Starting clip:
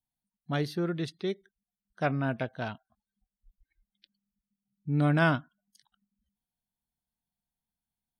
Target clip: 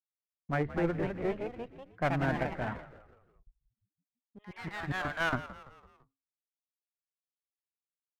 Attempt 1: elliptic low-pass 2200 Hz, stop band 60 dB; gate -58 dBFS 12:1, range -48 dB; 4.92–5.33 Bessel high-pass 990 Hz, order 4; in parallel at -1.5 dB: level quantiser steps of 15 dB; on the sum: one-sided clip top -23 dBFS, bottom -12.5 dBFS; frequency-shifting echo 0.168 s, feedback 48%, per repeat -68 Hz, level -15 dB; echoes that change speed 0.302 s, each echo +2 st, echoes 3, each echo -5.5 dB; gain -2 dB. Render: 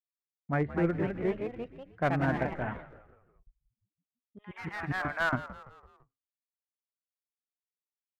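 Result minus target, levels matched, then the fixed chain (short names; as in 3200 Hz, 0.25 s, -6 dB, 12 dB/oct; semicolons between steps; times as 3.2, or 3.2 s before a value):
one-sided clip: distortion -7 dB
elliptic low-pass 2200 Hz, stop band 60 dB; gate -58 dBFS 12:1, range -48 dB; 4.92–5.33 Bessel high-pass 990 Hz, order 4; in parallel at -1.5 dB: level quantiser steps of 15 dB; on the sum: one-sided clip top -32.5 dBFS, bottom -12.5 dBFS; frequency-shifting echo 0.168 s, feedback 48%, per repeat -68 Hz, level -15 dB; echoes that change speed 0.302 s, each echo +2 st, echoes 3, each echo -5.5 dB; gain -2 dB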